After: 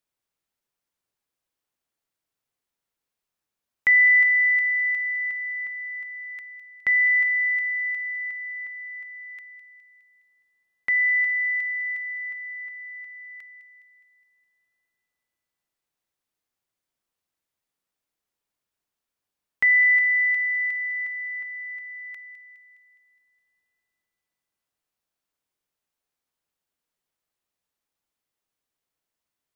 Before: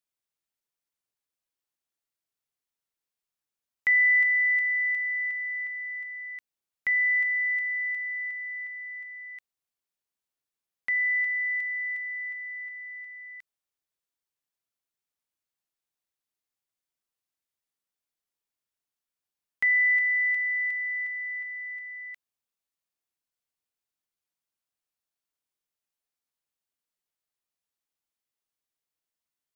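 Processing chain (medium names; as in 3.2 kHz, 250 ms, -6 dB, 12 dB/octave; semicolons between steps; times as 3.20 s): treble shelf 2.2 kHz -6 dB; feedback echo behind a high-pass 207 ms, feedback 55%, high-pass 1.9 kHz, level -12 dB; trim +7.5 dB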